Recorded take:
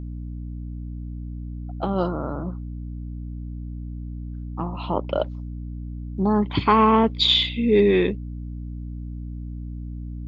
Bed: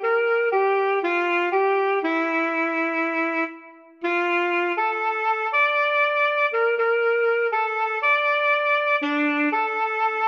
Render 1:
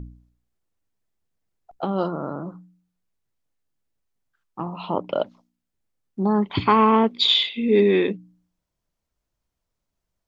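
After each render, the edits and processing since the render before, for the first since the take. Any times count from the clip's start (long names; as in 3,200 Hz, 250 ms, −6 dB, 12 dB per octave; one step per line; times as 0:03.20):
hum removal 60 Hz, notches 5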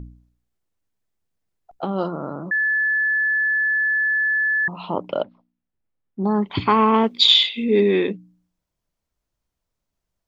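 0:02.51–0:04.68: beep over 1,730 Hz −17 dBFS
0:05.22–0:06.24: high-frequency loss of the air 350 metres
0:06.94–0:07.64: high-shelf EQ 3,200 Hz +8.5 dB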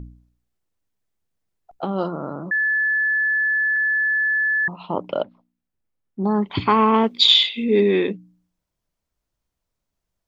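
0:03.76–0:04.91: downward expander −31 dBFS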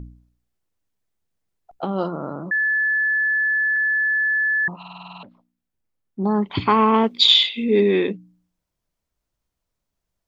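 0:04.78: stutter in place 0.05 s, 9 plays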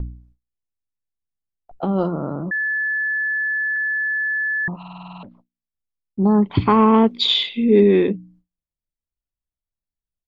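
spectral tilt −2.5 dB per octave
noise gate with hold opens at −42 dBFS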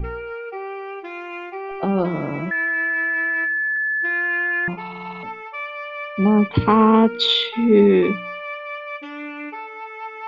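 mix in bed −10.5 dB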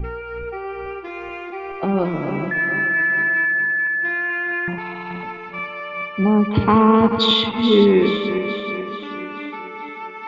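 feedback delay that plays each chunk backwards 215 ms, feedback 70%, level −9 dB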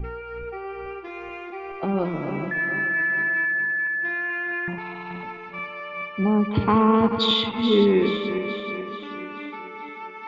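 level −4.5 dB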